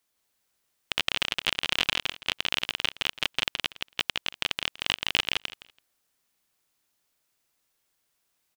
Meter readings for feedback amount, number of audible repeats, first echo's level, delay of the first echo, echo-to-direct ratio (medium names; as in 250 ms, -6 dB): 17%, 3, -3.0 dB, 166 ms, -3.0 dB